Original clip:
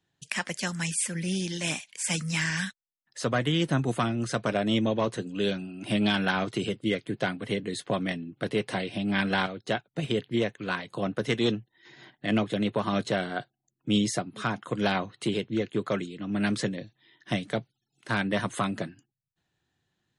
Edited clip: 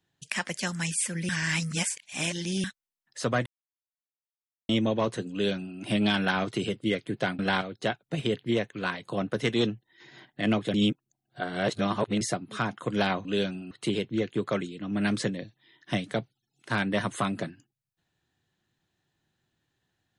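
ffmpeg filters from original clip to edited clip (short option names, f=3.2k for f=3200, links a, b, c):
-filter_complex "[0:a]asplit=10[a][b][c][d][e][f][g][h][i][j];[a]atrim=end=1.292[k];[b]atrim=start=1.288:end=2.642,asetpts=PTS-STARTPTS,areverse[l];[c]atrim=start=2.638:end=3.46,asetpts=PTS-STARTPTS,afade=t=out:st=0.818:d=0.004:c=hsin[m];[d]atrim=start=3.46:end=4.69,asetpts=PTS-STARTPTS,volume=0[n];[e]atrim=start=4.69:end=7.392,asetpts=PTS-STARTPTS,afade=t=in:d=0.004:c=hsin[o];[f]atrim=start=9.238:end=12.592[p];[g]atrim=start=12.588:end=14.062,asetpts=PTS-STARTPTS,areverse[q];[h]atrim=start=14.058:end=15.102[r];[i]atrim=start=5.318:end=5.782[s];[j]atrim=start=15.098[t];[k][l]acrossfade=d=0.004:c1=hsin:c2=hsin[u];[m][n][o]concat=n=3:v=0:a=1[v];[u][v]acrossfade=d=0.004:c1=hsin:c2=hsin[w];[w][p]acrossfade=d=0.004:c1=hsin:c2=hsin[x];[x][q]acrossfade=d=0.004:c1=hsin:c2=hsin[y];[y][r]acrossfade=d=0.004:c1=hsin:c2=hsin[z];[z][s]acrossfade=d=0.004:c1=hsin:c2=hsin[aa];[aa][t]acrossfade=d=0.004:c1=hsin:c2=hsin"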